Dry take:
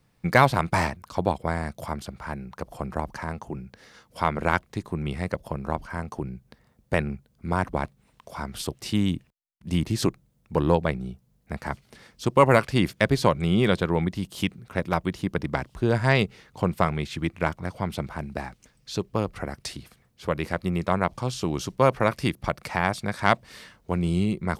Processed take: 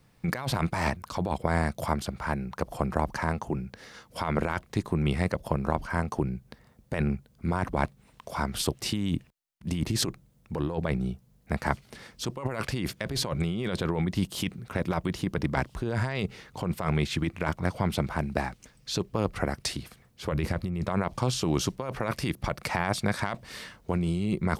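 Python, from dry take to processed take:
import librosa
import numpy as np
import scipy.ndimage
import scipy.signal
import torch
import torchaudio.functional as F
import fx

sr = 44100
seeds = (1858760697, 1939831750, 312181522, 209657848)

y = fx.low_shelf(x, sr, hz=170.0, db=10.0, at=(20.32, 20.89))
y = fx.over_compress(y, sr, threshold_db=-27.0, ratio=-1.0)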